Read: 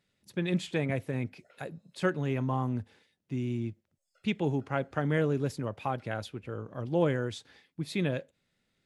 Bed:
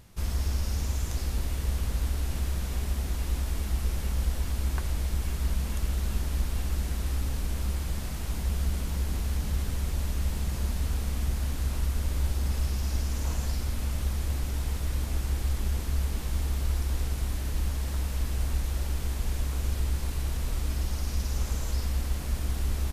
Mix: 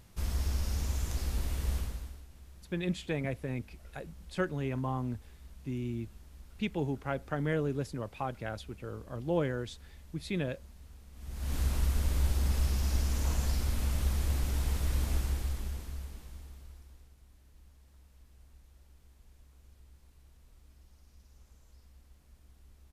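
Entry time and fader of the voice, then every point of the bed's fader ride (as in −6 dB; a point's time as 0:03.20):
2.35 s, −3.5 dB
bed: 0:01.77 −3.5 dB
0:02.28 −23.5 dB
0:11.11 −23.5 dB
0:11.55 −1 dB
0:15.14 −1 dB
0:17.16 −29.5 dB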